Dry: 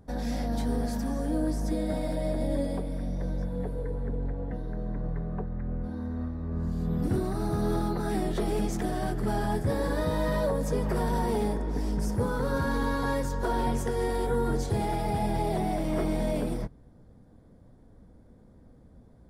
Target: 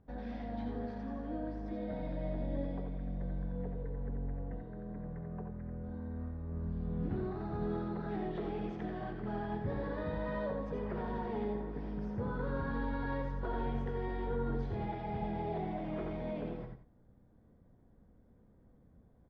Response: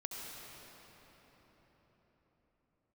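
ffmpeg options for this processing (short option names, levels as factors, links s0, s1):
-filter_complex "[0:a]lowpass=f=3200:w=0.5412,lowpass=f=3200:w=1.3066,aecho=1:1:87:0.376[s0];[1:a]atrim=start_sample=2205,atrim=end_sample=4410[s1];[s0][s1]afir=irnorm=-1:irlink=0,volume=0.501"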